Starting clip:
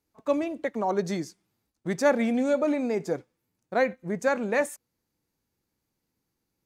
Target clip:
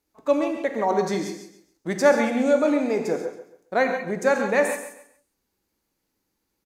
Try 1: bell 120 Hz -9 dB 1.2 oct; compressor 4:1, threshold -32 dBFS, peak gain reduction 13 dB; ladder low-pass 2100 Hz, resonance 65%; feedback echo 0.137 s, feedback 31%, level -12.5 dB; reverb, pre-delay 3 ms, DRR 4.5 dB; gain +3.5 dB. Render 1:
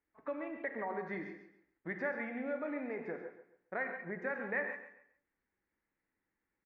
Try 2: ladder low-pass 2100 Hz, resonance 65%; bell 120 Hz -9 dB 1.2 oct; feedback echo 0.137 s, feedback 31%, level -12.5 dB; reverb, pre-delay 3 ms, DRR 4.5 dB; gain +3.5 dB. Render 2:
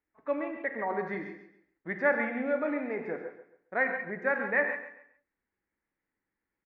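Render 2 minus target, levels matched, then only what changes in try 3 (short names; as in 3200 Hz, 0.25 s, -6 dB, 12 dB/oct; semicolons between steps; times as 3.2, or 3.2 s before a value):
2000 Hz band +6.5 dB
remove: ladder low-pass 2100 Hz, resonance 65%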